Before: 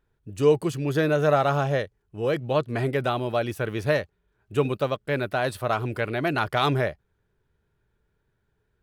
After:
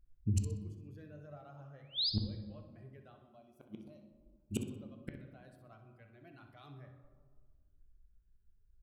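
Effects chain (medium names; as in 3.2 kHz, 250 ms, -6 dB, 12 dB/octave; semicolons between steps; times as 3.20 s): expander on every frequency bin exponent 1.5; bass shelf 220 Hz +9 dB; band-stop 920 Hz, Q 9.2; in parallel at +0.5 dB: peak limiter -16.5 dBFS, peak gain reduction 8.5 dB; 1.30–2.10 s: on the sum: painted sound rise 370–5200 Hz -34 dBFS; 3.12–4.70 s: static phaser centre 460 Hz, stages 6; inverted gate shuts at -23 dBFS, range -40 dB; feedback delay 63 ms, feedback 32%, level -10.5 dB; on a send at -5.5 dB: reverberation RT60 1.6 s, pre-delay 3 ms; on the sum: trim +1.5 dB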